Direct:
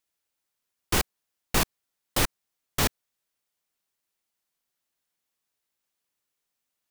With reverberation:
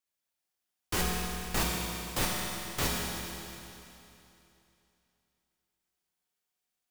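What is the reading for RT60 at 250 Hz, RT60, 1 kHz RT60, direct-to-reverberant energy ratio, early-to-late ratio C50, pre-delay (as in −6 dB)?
2.9 s, 2.9 s, 2.9 s, −3.5 dB, −1.0 dB, 5 ms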